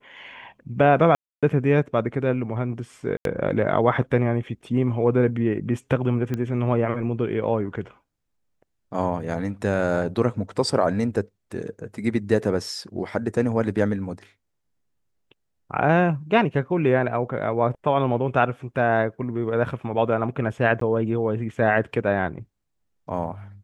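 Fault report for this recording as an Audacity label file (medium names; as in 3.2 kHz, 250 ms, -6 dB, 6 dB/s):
1.150000	1.430000	dropout 276 ms
3.170000	3.250000	dropout 82 ms
6.340000	6.340000	pop -15 dBFS
20.800000	20.810000	dropout 13 ms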